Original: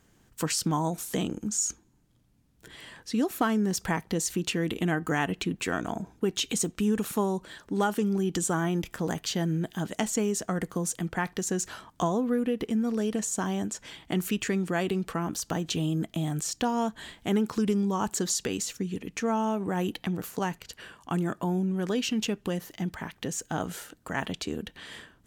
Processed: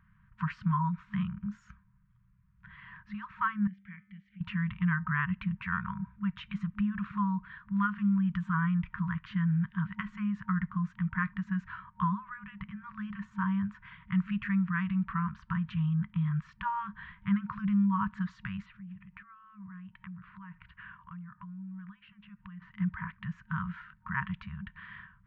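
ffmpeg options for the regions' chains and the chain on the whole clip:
ffmpeg -i in.wav -filter_complex "[0:a]asettb=1/sr,asplit=3[link_01][link_02][link_03];[link_01]atrim=end=3.674[link_04];[link_02]atrim=start=3.67:end=4.41,asetpts=PTS-STARTPTS,afade=type=in:duration=0.004:curve=qsin,afade=type=out:start_time=0.736:duration=0.004:curve=qsin,bandreject=frequency=98.64:width_type=h:width=4,bandreject=frequency=197.28:width_type=h:width=4,bandreject=frequency=295.92:width_type=h:width=4,bandreject=frequency=394.56:width_type=h:width=4,bandreject=frequency=493.2:width_type=h:width=4,bandreject=frequency=591.84:width_type=h:width=4,bandreject=frequency=690.48:width_type=h:width=4,bandreject=frequency=789.12:width_type=h:width=4,bandreject=frequency=887.76:width_type=h:width=4,bandreject=frequency=986.4:width_type=h:width=4,bandreject=frequency=1085.04:width_type=h:width=4,bandreject=frequency=1183.68:width_type=h:width=4,bandreject=frequency=1282.32:width_type=h:width=4,bandreject=frequency=1380.96:width_type=h:width=4,bandreject=frequency=1479.6:width_type=h:width=4,bandreject=frequency=1578.24:width_type=h:width=4,bandreject=frequency=1676.88:width_type=h:width=4,bandreject=frequency=1775.52:width_type=h:width=4,bandreject=frequency=1874.16:width_type=h:width=4,bandreject=frequency=1972.8:width_type=h:width=4,bandreject=frequency=2071.44:width_type=h:width=4,bandreject=frequency=2170.08:width_type=h:width=4,bandreject=frequency=2268.72:width_type=h:width=4,bandreject=frequency=2367.36:width_type=h:width=4,bandreject=frequency=2466:width_type=h:width=4,bandreject=frequency=2564.64:width_type=h:width=4,bandreject=frequency=2663.28:width_type=h:width=4,bandreject=frequency=2761.92:width_type=h:width=4,bandreject=frequency=2860.56:width_type=h:width=4,bandreject=frequency=2959.2:width_type=h:width=4,bandreject=frequency=3057.84:width_type=h:width=4,bandreject=frequency=3156.48:width_type=h:width=4,bandreject=frequency=3255.12:width_type=h:width=4,bandreject=frequency=3353.76:width_type=h:width=4,bandreject=frequency=3452.4:width_type=h:width=4,bandreject=frequency=3551.04:width_type=h:width=4,bandreject=frequency=3649.68:width_type=h:width=4,bandreject=frequency=3748.32:width_type=h:width=4,bandreject=frequency=3846.96:width_type=h:width=4,asubboost=boost=12:cutoff=96,asplit=3[link_05][link_06][link_07];[link_05]bandpass=frequency=270:width_type=q:width=8,volume=0dB[link_08];[link_06]bandpass=frequency=2290:width_type=q:width=8,volume=-6dB[link_09];[link_07]bandpass=frequency=3010:width_type=q:width=8,volume=-9dB[link_10];[link_08][link_09][link_10]amix=inputs=3:normalize=0[link_11];[link_03]atrim=start=4.406[link_12];[link_04][link_11]acrossfade=duration=0.004:curve1=hsin:curve2=qsin[link_13];[link_13][link_12]acrossfade=duration=0.004:curve1=qsin:curve2=hsin,asettb=1/sr,asplit=3[link_14][link_15][link_16];[link_14]atrim=end=18.664[link_17];[link_15]atrim=start=18.66:end=22.62,asetpts=PTS-STARTPTS,afade=type=in:duration=0.004:curve=qsin,afade=type=out:start_time=3.956:duration=0.004:curve=qsin,lowpass=frequency=4000:width=0.5412,lowpass=frequency=4000:width=1.3066,acompressor=threshold=-41dB:ratio=10:attack=3.2:release=140:knee=1:detection=peak[link_18];[link_16]atrim=start=22.616[link_19];[link_17][link_18]acrossfade=duration=0.004:curve1=hsin:curve2=qsin[link_20];[link_20][link_19]acrossfade=duration=0.004:curve1=qsin:curve2=hsin,afftfilt=real='re*(1-between(b*sr/4096,210,930))':imag='im*(1-between(b*sr/4096,210,930))':win_size=4096:overlap=0.75,lowpass=frequency=1900:width=0.5412,lowpass=frequency=1900:width=1.3066,volume=1.5dB" out.wav

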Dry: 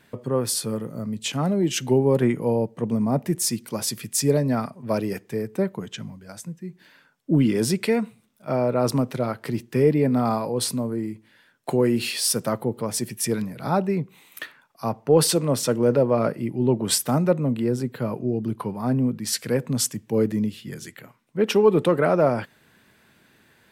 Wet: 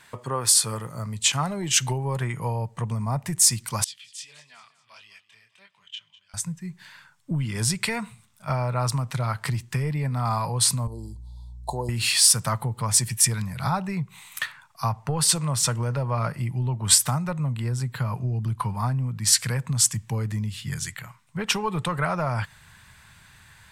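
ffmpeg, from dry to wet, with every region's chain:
ffmpeg -i in.wav -filter_complex "[0:a]asettb=1/sr,asplit=3[link_01][link_02][link_03];[link_01]atrim=end=3.844[link_04];[link_02]atrim=start=3.84:end=6.34,asetpts=PTS-STARTPTS,afade=type=in:duration=0.004:curve=qsin,afade=type=out:start_time=2.496:duration=0.004:curve=qsin,flanger=delay=19.5:depth=7.2:speed=1.6,bandpass=frequency=3100:width_type=q:width=5.7,aecho=1:1:201|402|603|804:0.141|0.0706|0.0353|0.0177,atrim=end_sample=110250[link_05];[link_03]atrim=start=6.336[link_06];[link_04][link_05]acrossfade=duration=0.004:curve1=hsin:curve2=qsin[link_07];[link_07][link_06]acrossfade=duration=0.004:curve1=qsin:curve2=hsin,asettb=1/sr,asplit=3[link_08][link_09][link_10];[link_08]atrim=end=10.874[link_11];[link_09]atrim=start=10.87:end=11.89,asetpts=PTS-STARTPTS,afade=type=in:duration=0.004:curve=qsin,afade=type=out:start_time=1.016:duration=0.004:curve=qsin,asuperstop=centerf=1900:order=12:qfactor=0.67,bass=frequency=250:gain=-14,treble=frequency=4000:gain=-8,aeval=exprs='val(0)+0.002*(sin(2*PI*60*n/s)+sin(2*PI*2*60*n/s)/2+sin(2*PI*3*60*n/s)/3+sin(2*PI*4*60*n/s)/4+sin(2*PI*5*60*n/s)/5)':channel_layout=same[link_12];[link_10]atrim=start=11.886[link_13];[link_11][link_12]acrossfade=duration=0.004:curve1=hsin:curve2=qsin[link_14];[link_14][link_13]acrossfade=duration=0.004:curve1=qsin:curve2=hsin,asubboost=boost=9.5:cutoff=110,acompressor=threshold=-21dB:ratio=6,equalizer=frequency=250:width_type=o:width=1:gain=-8,equalizer=frequency=500:width_type=o:width=1:gain=-5,equalizer=frequency=1000:width_type=o:width=1:gain=9,equalizer=frequency=2000:width_type=o:width=1:gain=4,equalizer=frequency=4000:width_type=o:width=1:gain=4,equalizer=frequency=8000:width_type=o:width=1:gain=11" out.wav

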